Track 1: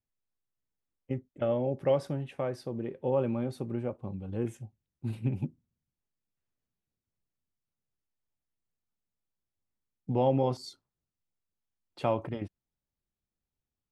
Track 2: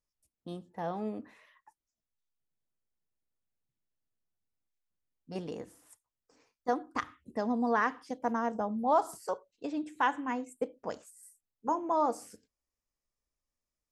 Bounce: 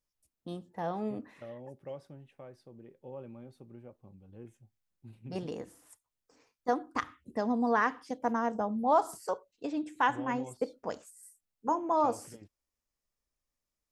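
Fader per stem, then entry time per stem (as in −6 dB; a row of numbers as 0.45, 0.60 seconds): −16.5, +1.0 decibels; 0.00, 0.00 seconds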